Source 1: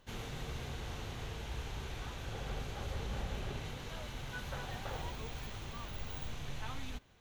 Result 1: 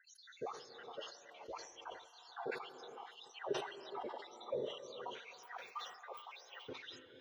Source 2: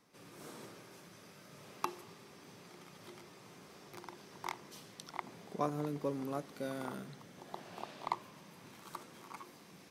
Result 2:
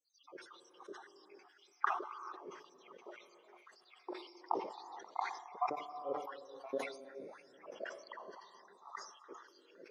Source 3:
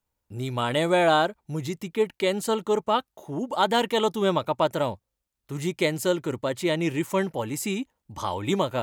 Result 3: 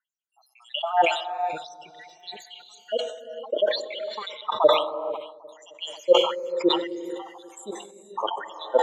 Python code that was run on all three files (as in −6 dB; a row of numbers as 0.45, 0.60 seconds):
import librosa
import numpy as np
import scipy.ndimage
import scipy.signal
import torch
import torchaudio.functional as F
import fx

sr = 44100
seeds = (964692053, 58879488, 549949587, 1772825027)

p1 = fx.spec_dropout(x, sr, seeds[0], share_pct=73)
p2 = fx.tilt_eq(p1, sr, slope=-2.5)
p3 = fx.filter_lfo_highpass(p2, sr, shape='sine', hz=1.9, low_hz=380.0, high_hz=5700.0, q=3.9)
p4 = fx.spec_topn(p3, sr, count=32)
p5 = p4 + fx.echo_bbd(p4, sr, ms=266, stages=2048, feedback_pct=62, wet_db=-19.5, dry=0)
p6 = fx.rev_gated(p5, sr, seeds[1], gate_ms=490, shape='rising', drr_db=8.5)
y = fx.sustainer(p6, sr, db_per_s=84.0)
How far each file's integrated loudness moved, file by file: −4.0, +0.5, +0.5 LU